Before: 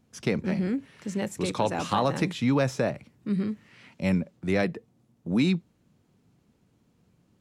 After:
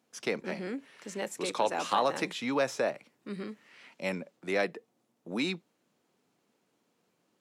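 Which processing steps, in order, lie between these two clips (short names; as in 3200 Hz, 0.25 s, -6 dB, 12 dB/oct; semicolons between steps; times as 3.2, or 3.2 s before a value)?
HPF 400 Hz 12 dB/oct; gain -1 dB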